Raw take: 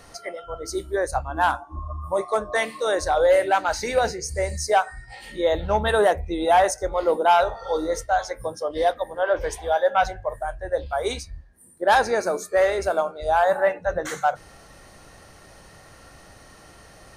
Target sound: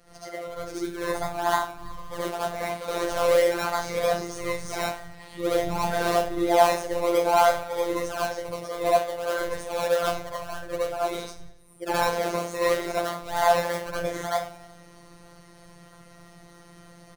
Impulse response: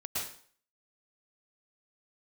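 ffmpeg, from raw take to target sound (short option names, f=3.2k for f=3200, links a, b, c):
-filter_complex "[0:a]acrossover=split=190|1600[a][b][c];[a]equalizer=f=79:w=1.1:g=4.5[d];[c]asoftclip=type=hard:threshold=-32.5dB[e];[d][b][e]amix=inputs=3:normalize=0,aecho=1:1:93|186|279|372|465:0.133|0.0747|0.0418|0.0234|0.0131,asplit=2[f][g];[g]acrusher=samples=22:mix=1:aa=0.000001:lfo=1:lforange=13.2:lforate=3.2,volume=-3.5dB[h];[f][h]amix=inputs=2:normalize=0[i];[1:a]atrim=start_sample=2205,asetrate=70560,aresample=44100[j];[i][j]afir=irnorm=-1:irlink=0,afftfilt=real='hypot(re,im)*cos(PI*b)':imag='0':win_size=1024:overlap=0.75,volume=-1.5dB"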